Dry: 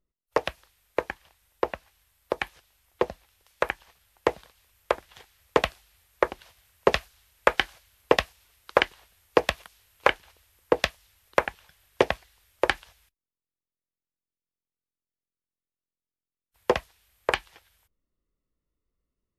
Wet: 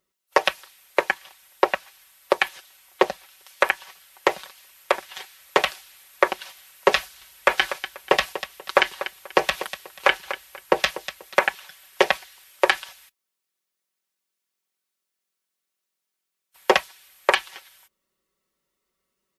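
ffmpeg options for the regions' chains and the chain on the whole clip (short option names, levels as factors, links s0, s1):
-filter_complex "[0:a]asettb=1/sr,asplit=3[s0][s1][s2];[s0]atrim=end=6.974[s3];[s1]atrim=start=6.97:end=11.39,asetpts=PTS-STARTPTS,afade=t=in:d=0.004:c=qsin,afade=t=out:st=4.416:d=0.004:c=qsin,lowshelf=f=200:g=8,aecho=1:1:243|486:0.0891|0.0223,atrim=end_sample=194922[s4];[s2]atrim=start=11.386[s5];[s3][s4]acrossfade=d=0.004:c1=hsin:c2=qsin[s6];[s6][s5]acrossfade=d=0.004:c1=qsin:c2=hsin,highpass=f=870:p=1,aecho=1:1:5.3:0.65,alimiter=level_in=4.73:limit=0.891:release=50:level=0:latency=1,volume=0.891"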